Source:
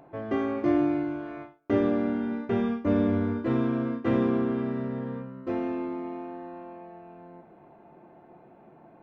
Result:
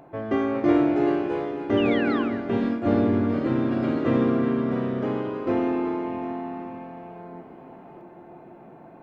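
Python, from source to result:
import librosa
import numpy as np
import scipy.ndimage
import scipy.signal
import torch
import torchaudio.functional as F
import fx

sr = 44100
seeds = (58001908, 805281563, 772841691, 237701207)

p1 = fx.rider(x, sr, range_db=4, speed_s=2.0)
p2 = p1 + fx.echo_split(p1, sr, split_hz=300.0, low_ms=602, high_ms=376, feedback_pct=52, wet_db=-11, dry=0)
p3 = fx.spec_paint(p2, sr, seeds[0], shape='fall', start_s=1.77, length_s=0.46, low_hz=1000.0, high_hz=3100.0, level_db=-36.0)
p4 = fx.echo_pitch(p3, sr, ms=423, semitones=3, count=2, db_per_echo=-6.0)
y = F.gain(torch.from_numpy(p4), 2.0).numpy()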